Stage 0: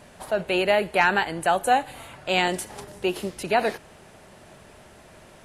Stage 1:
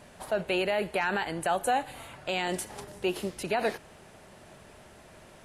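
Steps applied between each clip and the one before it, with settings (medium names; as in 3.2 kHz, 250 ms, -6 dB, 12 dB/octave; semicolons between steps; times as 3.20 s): peak limiter -14.5 dBFS, peak gain reduction 8.5 dB; trim -3 dB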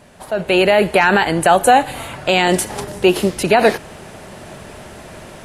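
peaking EQ 180 Hz +2 dB 3 oct; level rider gain up to 11 dB; trim +4.5 dB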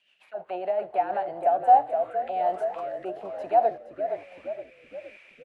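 auto-wah 720–3000 Hz, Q 9, down, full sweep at -16 dBFS; frequency-shifting echo 467 ms, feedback 47%, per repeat -43 Hz, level -7.5 dB; rotary cabinet horn 7 Hz, later 1.2 Hz, at 0.81 s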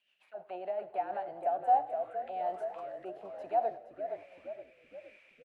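feedback delay 99 ms, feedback 52%, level -20 dB; trim -9 dB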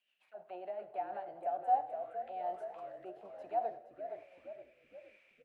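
reverberation RT60 0.45 s, pre-delay 3 ms, DRR 12 dB; trim -5.5 dB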